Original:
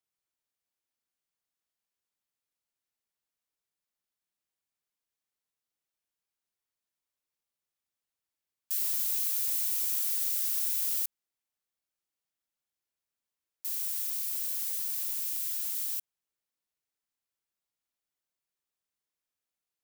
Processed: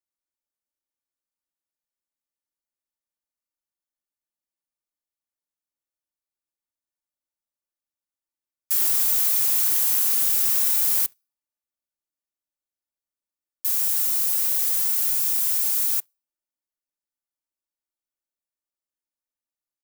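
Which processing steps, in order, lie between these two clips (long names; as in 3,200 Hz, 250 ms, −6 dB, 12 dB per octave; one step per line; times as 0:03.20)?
parametric band 2,800 Hz −7 dB 1.4 octaves
comb filter 3.4 ms, depth 73%
on a send at −19 dB: convolution reverb RT60 0.90 s, pre-delay 6 ms
on the sum: leveller curve on the samples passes 3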